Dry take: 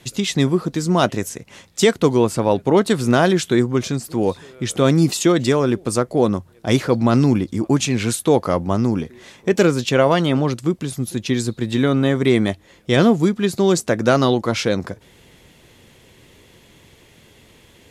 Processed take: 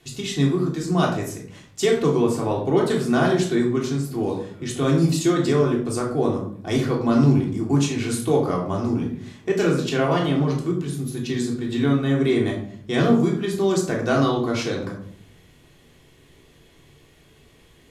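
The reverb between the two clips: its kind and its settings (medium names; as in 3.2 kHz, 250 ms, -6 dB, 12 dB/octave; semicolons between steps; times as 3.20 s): simulated room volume 750 m³, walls furnished, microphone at 3.4 m; trim -9.5 dB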